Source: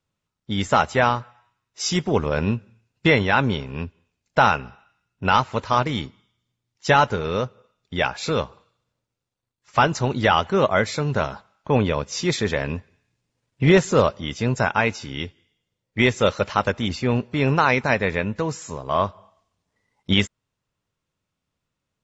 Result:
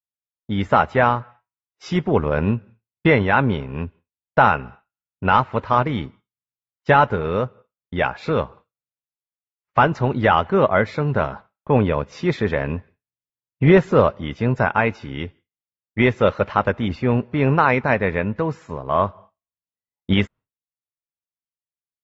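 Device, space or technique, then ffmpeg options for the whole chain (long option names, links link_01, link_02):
hearing-loss simulation: -af "lowpass=2100,agate=range=-33dB:threshold=-40dB:ratio=3:detection=peak,volume=2.5dB"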